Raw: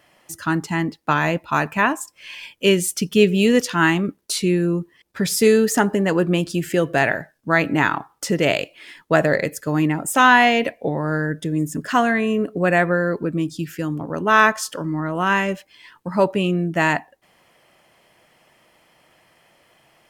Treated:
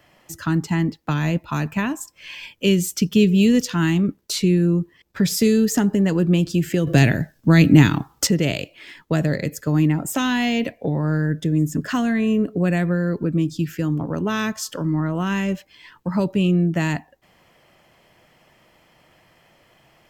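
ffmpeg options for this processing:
-filter_complex "[0:a]asplit=3[a][b][c];[a]atrim=end=6.872[d];[b]atrim=start=6.868:end=8.272,asetpts=PTS-STARTPTS,volume=9.5dB[e];[c]atrim=start=8.268[f];[d][e]acrossfade=d=0.004:c1=hsin:c2=hsin[g];[g][f]acrossfade=d=0.004:c1=hsin:c2=hsin,lowshelf=f=190:g=8.5,acrossover=split=320|3000[h][i][j];[i]acompressor=threshold=-27dB:ratio=6[k];[h][k][j]amix=inputs=3:normalize=0,equalizer=f=9.6k:w=6.6:g=-14"

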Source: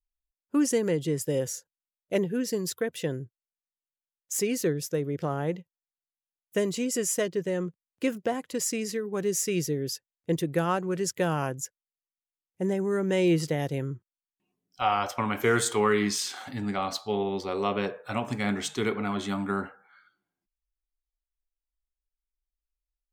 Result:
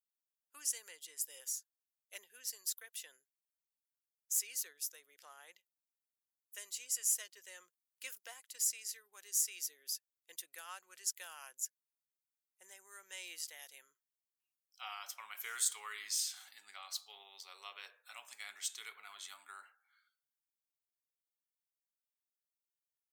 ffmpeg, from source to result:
-filter_complex "[0:a]asplit=3[a][b][c];[a]atrim=end=7.372[d];[b]atrim=start=7.368:end=8.342,asetpts=PTS-STARTPTS,volume=3dB[e];[c]atrim=start=8.338[f];[d][e]acrossfade=d=0.004:c1=hsin:c2=hsin[g];[g][f]acrossfade=d=0.004:c1=hsin:c2=hsin,highpass=870,aderivative,volume=-3.5dB"

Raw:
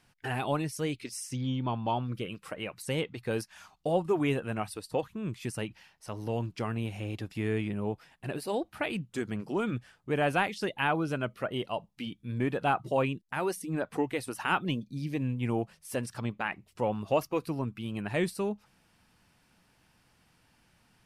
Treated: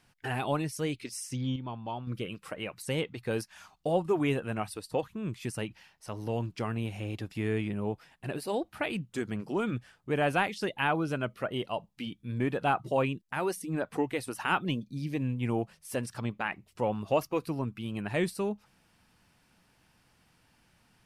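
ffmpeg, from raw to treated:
-filter_complex "[0:a]asplit=3[a][b][c];[a]atrim=end=1.562[d];[b]atrim=start=1.558:end=2.072,asetpts=PTS-STARTPTS,volume=-7dB[e];[c]atrim=start=2.068[f];[d][e]acrossfade=d=0.004:c1=hsin:c2=hsin[g];[g][f]acrossfade=d=0.004:c1=hsin:c2=hsin"

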